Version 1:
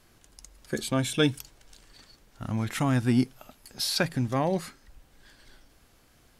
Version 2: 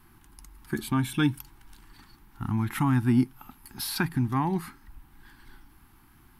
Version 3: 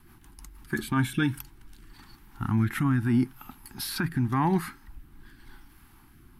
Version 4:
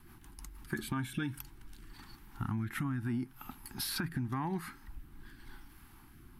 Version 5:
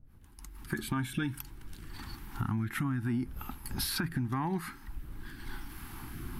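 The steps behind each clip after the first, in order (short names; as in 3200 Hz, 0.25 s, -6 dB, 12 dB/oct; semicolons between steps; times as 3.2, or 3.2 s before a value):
EQ curve 350 Hz 0 dB, 560 Hz -29 dB, 850 Hz +3 dB, 7000 Hz -14 dB, 12000 Hz +1 dB; in parallel at -2.5 dB: compressor, threshold -35 dBFS, peak gain reduction 16 dB
dynamic EQ 1600 Hz, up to +7 dB, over -48 dBFS, Q 1.7; limiter -18.5 dBFS, peak gain reduction 7.5 dB; rotary speaker horn 6.3 Hz, later 0.85 Hz, at 0.57; gain +4 dB
compressor 6:1, threshold -31 dBFS, peak gain reduction 11.5 dB; gain -1.5 dB
opening faded in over 0.91 s; recorder AGC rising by 7 dB/s; wind noise 81 Hz -53 dBFS; gain +3 dB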